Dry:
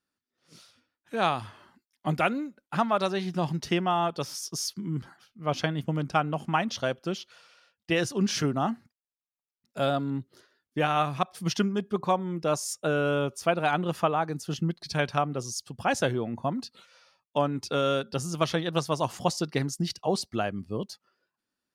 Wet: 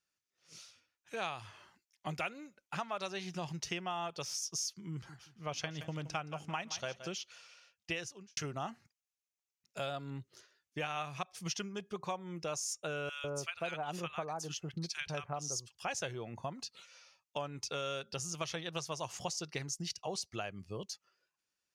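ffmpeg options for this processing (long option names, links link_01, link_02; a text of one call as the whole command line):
ffmpeg -i in.wav -filter_complex "[0:a]asettb=1/sr,asplit=3[link_01][link_02][link_03];[link_01]atrim=end=4.924[link_04];[link_02]atrim=start=4.92:end=7.08,asetpts=PTS-STARTPTS,afade=type=in:duration=0.004:curve=qsin,afade=type=out:start_time=2.156:duration=0.004:curve=qsin,aecho=1:1:171|342|513:0.178|0.0516|0.015,atrim=end_sample=95256[link_05];[link_03]atrim=start=7.076[link_06];[link_04][link_05]acrossfade=duration=0.004:curve1=hsin:curve2=qsin[link_07];[link_07][link_06]acrossfade=duration=0.004:curve1=qsin:curve2=hsin,asettb=1/sr,asplit=3[link_08][link_09][link_10];[link_08]atrim=end=13.094[link_11];[link_09]atrim=start=13.09:end=15.84,asetpts=PTS-STARTPTS,afade=type=in:duration=0.004:curve=qsin,afade=type=out:start_time=2.746:duration=0.004:curve=qsin,acrossover=split=1300[link_12][link_13];[link_12]adelay=150[link_14];[link_14][link_13]amix=inputs=2:normalize=0,atrim=end_sample=121275[link_15];[link_10]atrim=start=15.836[link_16];[link_11][link_15]acrossfade=duration=0.004:curve1=hsin:curve2=qsin[link_17];[link_17][link_16]acrossfade=duration=0.004:curve1=qsin:curve2=hsin,asplit=2[link_18][link_19];[link_18]atrim=end=8.37,asetpts=PTS-STARTPTS,afade=type=out:start_time=7.93:duration=0.44:curve=qua[link_20];[link_19]atrim=start=8.37,asetpts=PTS-STARTPTS,afade=type=in:duration=0.004:curve=hsin[link_21];[link_20][link_21]concat=n=2:v=0:a=1,equalizer=frequency=250:width_type=o:width=0.67:gain=-10,equalizer=frequency=2500:width_type=o:width=0.67:gain=7,equalizer=frequency=6300:width_type=o:width=0.67:gain=11,acompressor=threshold=-33dB:ratio=2.5,volume=-5.5dB" out.wav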